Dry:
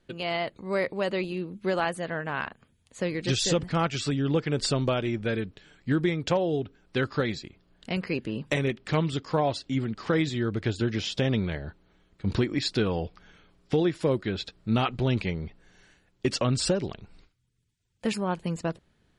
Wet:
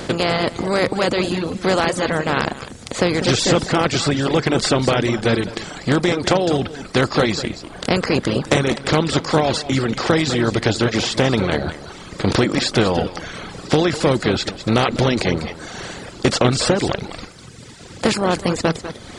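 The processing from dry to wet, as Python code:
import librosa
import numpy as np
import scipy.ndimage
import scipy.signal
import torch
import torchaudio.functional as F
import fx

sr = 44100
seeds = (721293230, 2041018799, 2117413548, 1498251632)

y = fx.bin_compress(x, sr, power=0.4)
y = y + 10.0 ** (-8.0 / 20.0) * np.pad(y, (int(199 * sr / 1000.0), 0))[:len(y)]
y = fx.dereverb_blind(y, sr, rt60_s=1.2)
y = y * 10.0 ** (4.5 / 20.0)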